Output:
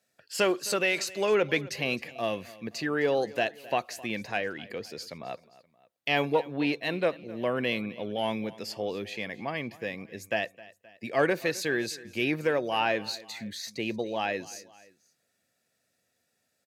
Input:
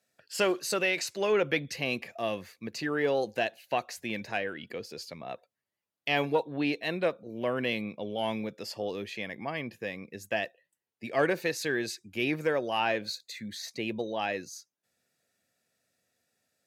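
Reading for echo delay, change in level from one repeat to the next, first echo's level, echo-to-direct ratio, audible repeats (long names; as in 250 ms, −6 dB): 262 ms, −5.5 dB, −20.0 dB, −19.0 dB, 2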